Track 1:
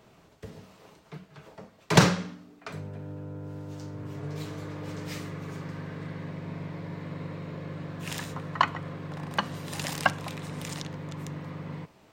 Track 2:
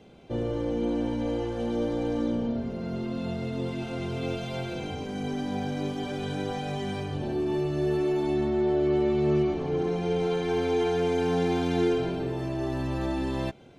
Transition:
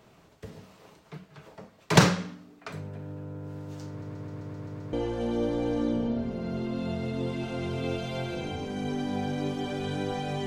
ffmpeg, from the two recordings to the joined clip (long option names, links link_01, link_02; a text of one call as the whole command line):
ffmpeg -i cue0.wav -i cue1.wav -filter_complex "[0:a]apad=whole_dur=10.46,atrim=end=10.46,asplit=8[link_01][link_02][link_03][link_04][link_05][link_06][link_07][link_08];[link_01]atrim=end=4.022[link_09];[link_02]atrim=start=3.888:end=4.022[link_10];[link_03]atrim=start=3.888:end=4.022[link_11];[link_04]atrim=start=3.888:end=4.022[link_12];[link_05]atrim=start=3.888:end=4.022[link_13];[link_06]atrim=start=3.888:end=4.022[link_14];[link_07]atrim=start=3.888:end=4.022[link_15];[link_08]atrim=start=3.888:end=4.022[link_16];[1:a]atrim=start=1.318:end=6.85[link_17];[link_09][link_10]acrossfade=duration=0.004:curve1=hsin:curve2=hsin[link_18];[link_18][link_11]acrossfade=duration=0.004:curve1=hsin:curve2=hsin[link_19];[link_19][link_12]acrossfade=duration=0.004:curve1=hsin:curve2=hsin[link_20];[link_20][link_13]acrossfade=duration=0.004:curve1=hsin:curve2=hsin[link_21];[link_21][link_14]acrossfade=duration=0.004:curve1=hsin:curve2=hsin[link_22];[link_22][link_15]acrossfade=duration=0.004:curve1=hsin:curve2=hsin[link_23];[link_23][link_16]acrossfade=duration=0.004:curve1=hsin:curve2=hsin[link_24];[link_24][link_17]acrossfade=duration=0.004:curve1=hsin:curve2=hsin" out.wav